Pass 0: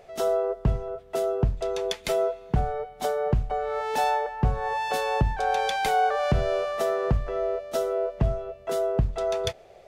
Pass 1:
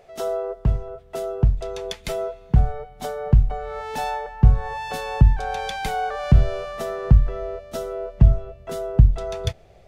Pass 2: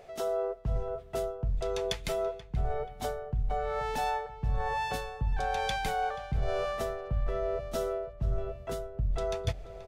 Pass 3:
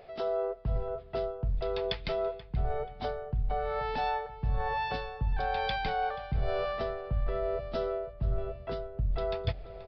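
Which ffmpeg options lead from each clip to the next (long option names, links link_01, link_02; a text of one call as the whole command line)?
ffmpeg -i in.wav -af "asubboost=boost=4.5:cutoff=210,volume=-1dB" out.wav
ffmpeg -i in.wav -filter_complex "[0:a]areverse,acompressor=threshold=-27dB:ratio=10,areverse,asplit=2[link_01][link_02];[link_02]adelay=482,lowpass=frequency=2400:poles=1,volume=-14.5dB,asplit=2[link_03][link_04];[link_04]adelay=482,lowpass=frequency=2400:poles=1,volume=0.39,asplit=2[link_05][link_06];[link_06]adelay=482,lowpass=frequency=2400:poles=1,volume=0.39,asplit=2[link_07][link_08];[link_08]adelay=482,lowpass=frequency=2400:poles=1,volume=0.39[link_09];[link_01][link_03][link_05][link_07][link_09]amix=inputs=5:normalize=0" out.wav
ffmpeg -i in.wav -af "aresample=11025,aresample=44100" out.wav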